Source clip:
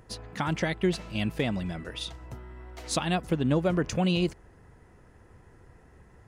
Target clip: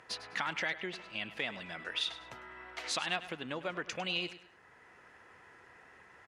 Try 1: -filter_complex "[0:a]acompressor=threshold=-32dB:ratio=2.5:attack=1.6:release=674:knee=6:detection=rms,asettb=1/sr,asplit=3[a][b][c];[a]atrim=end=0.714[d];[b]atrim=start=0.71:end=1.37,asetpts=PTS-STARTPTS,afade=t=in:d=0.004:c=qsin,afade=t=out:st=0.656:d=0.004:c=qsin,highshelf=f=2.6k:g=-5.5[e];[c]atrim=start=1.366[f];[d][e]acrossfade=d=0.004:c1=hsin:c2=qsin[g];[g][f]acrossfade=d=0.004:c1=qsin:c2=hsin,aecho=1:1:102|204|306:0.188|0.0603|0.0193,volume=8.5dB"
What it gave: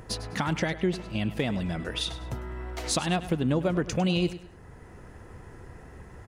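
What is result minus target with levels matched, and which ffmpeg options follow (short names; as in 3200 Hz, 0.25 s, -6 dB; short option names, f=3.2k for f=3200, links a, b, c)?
2000 Hz band -7.5 dB
-filter_complex "[0:a]acompressor=threshold=-32dB:ratio=2.5:attack=1.6:release=674:knee=6:detection=rms,bandpass=f=2.2k:t=q:w=0.9:csg=0,asettb=1/sr,asplit=3[a][b][c];[a]atrim=end=0.714[d];[b]atrim=start=0.71:end=1.37,asetpts=PTS-STARTPTS,afade=t=in:d=0.004:c=qsin,afade=t=out:st=0.656:d=0.004:c=qsin,highshelf=f=2.6k:g=-5.5[e];[c]atrim=start=1.366[f];[d][e]acrossfade=d=0.004:c1=hsin:c2=qsin[g];[g][f]acrossfade=d=0.004:c1=qsin:c2=hsin,aecho=1:1:102|204|306:0.188|0.0603|0.0193,volume=8.5dB"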